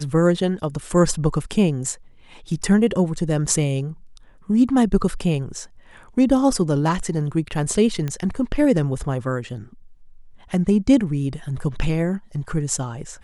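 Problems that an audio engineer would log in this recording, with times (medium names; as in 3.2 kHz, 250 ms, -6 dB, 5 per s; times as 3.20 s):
8.08 s: pop -14 dBFS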